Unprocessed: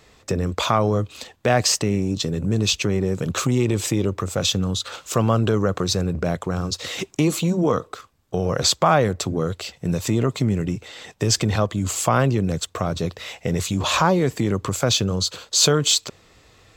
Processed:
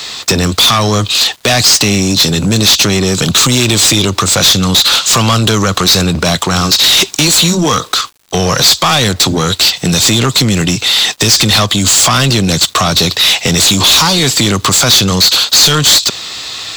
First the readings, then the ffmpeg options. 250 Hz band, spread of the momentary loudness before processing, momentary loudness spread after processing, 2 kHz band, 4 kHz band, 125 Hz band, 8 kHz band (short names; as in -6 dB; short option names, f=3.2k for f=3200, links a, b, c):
+9.0 dB, 9 LU, 6 LU, +15.0 dB, +18.5 dB, +8.5 dB, +15.5 dB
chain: -filter_complex "[0:a]equalizer=f=500:t=o:w=1:g=-8,equalizer=f=2k:t=o:w=1:g=-4,equalizer=f=4k:t=o:w=1:g=11,equalizer=f=8k:t=o:w=1:g=4,acrossover=split=150|3000[a][b][c];[b]acompressor=threshold=-29dB:ratio=6[d];[a][d][c]amix=inputs=3:normalize=0,asplit=2[e][f];[f]highpass=f=720:p=1,volume=29dB,asoftclip=type=tanh:threshold=-3.5dB[g];[e][g]amix=inputs=2:normalize=0,lowpass=f=7k:p=1,volume=-6dB,acontrast=70,aeval=exprs='val(0)*gte(abs(val(0)),0.02)':c=same,volume=-1dB"